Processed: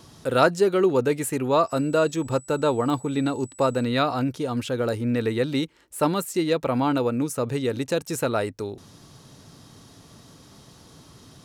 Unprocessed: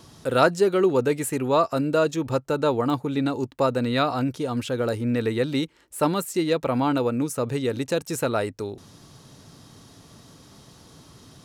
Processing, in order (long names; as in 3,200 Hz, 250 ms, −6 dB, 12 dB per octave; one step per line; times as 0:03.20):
0:01.67–0:03.83: steady tone 7,900 Hz −47 dBFS